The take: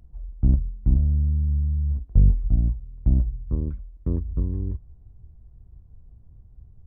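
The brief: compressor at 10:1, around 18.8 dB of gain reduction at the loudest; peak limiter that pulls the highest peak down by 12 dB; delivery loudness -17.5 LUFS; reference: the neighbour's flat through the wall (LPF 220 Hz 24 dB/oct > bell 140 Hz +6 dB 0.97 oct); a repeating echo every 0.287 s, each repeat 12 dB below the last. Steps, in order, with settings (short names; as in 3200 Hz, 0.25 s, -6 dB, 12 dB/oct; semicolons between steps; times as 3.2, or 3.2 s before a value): compressor 10:1, threshold -30 dBFS; limiter -30.5 dBFS; LPF 220 Hz 24 dB/oct; bell 140 Hz +6 dB 0.97 oct; feedback echo 0.287 s, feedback 25%, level -12 dB; gain +22 dB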